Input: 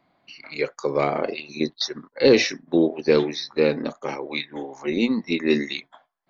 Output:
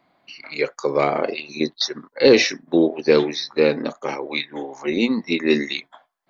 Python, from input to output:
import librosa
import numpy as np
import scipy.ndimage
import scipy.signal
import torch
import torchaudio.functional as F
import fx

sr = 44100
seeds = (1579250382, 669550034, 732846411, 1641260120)

y = fx.low_shelf(x, sr, hz=170.0, db=-6.5)
y = y * librosa.db_to_amplitude(3.5)